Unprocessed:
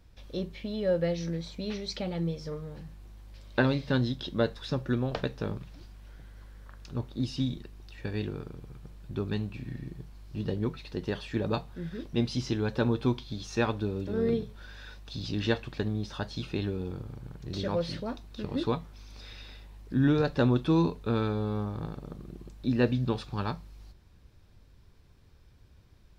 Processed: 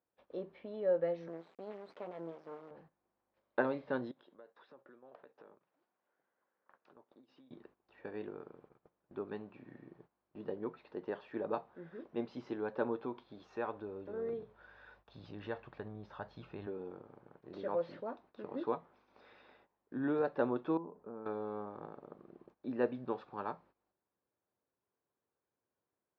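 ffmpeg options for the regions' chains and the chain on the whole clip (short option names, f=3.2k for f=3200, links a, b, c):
-filter_complex "[0:a]asettb=1/sr,asplit=3[a][b][c];[a]atrim=end=1.284[d];[b]atrim=start=1.28:end=2.71,asetpts=PTS-STARTPTS,afade=t=in:d=0.004:c=qsin,afade=t=out:st=1.426:d=0.004:c=qsin,highpass=140,lowpass=4.5k,acrusher=bits=5:dc=4:mix=0:aa=0.000001[e];[c]atrim=start=2.706[f];[d][e]acrossfade=d=0.004:c1=hsin:c2=qsin[g];[g][f]acrossfade=d=0.004:c1=qsin:c2=hsin,asettb=1/sr,asplit=3[h][i][j];[h]atrim=end=4.114[k];[i]atrim=start=4.11:end=7.51,asetpts=PTS-STARTPTS,afade=t=in:d=0.004:c=qsin,afade=t=out:st=3.396:d=0.004:c=qsin,highpass=110,lowpass=6.4k,lowshelf=f=210:g=-11,acompressor=threshold=-47dB:ratio=8:attack=3.2:release=140:knee=1:detection=peak[l];[j]atrim=start=7.506[m];[k][l]acrossfade=d=0.004:c1=hsin:c2=qsin[n];[n][m]acrossfade=d=0.004:c1=qsin:c2=hsin,asettb=1/sr,asplit=3[o][p][q];[o]atrim=end=13.054[r];[p]atrim=start=13.05:end=16.67,asetpts=PTS-STARTPTS,afade=t=in:d=0.004:c=qsin,afade=t=out:st=3.616:d=0.004:c=qsin,acompressor=threshold=-31dB:ratio=1.5:attack=3.2:release=140:knee=1:detection=peak,asubboost=boost=10.5:cutoff=100[s];[q]atrim=start=16.666[t];[r][s]acrossfade=d=0.004:c1=hsin:c2=qsin[u];[u][t]acrossfade=d=0.004:c1=qsin:c2=hsin,asettb=1/sr,asplit=3[v][w][x];[v]atrim=end=20.774[y];[w]atrim=start=20.77:end=21.26,asetpts=PTS-STARTPTS,afade=t=in:d=0.004:c=qsin,afade=t=out:st=0.486:d=0.004:c=qsin,lowpass=1.1k,equalizer=f=200:w=3.9:g=7.5,acompressor=threshold=-41dB:ratio=2:attack=3.2:release=140:knee=1:detection=peak[z];[x]atrim=start=21.256[aa];[y][z]acrossfade=d=0.004:c1=hsin:c2=qsin[ab];[ab][aa]acrossfade=d=0.004:c1=qsin:c2=hsin,highpass=430,agate=range=-15dB:threshold=-57dB:ratio=16:detection=peak,lowpass=1.2k,volume=-2dB"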